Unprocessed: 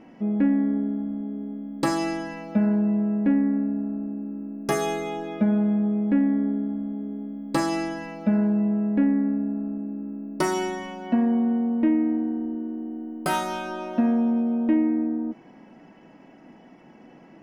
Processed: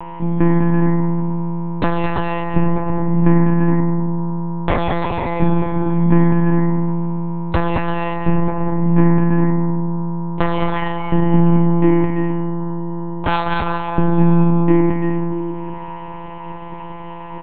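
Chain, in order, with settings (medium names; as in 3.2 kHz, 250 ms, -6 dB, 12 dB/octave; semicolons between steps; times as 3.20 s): whistle 950 Hz -31 dBFS; bouncing-ball echo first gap 210 ms, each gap 0.6×, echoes 5; monotone LPC vocoder at 8 kHz 170 Hz; trim +7 dB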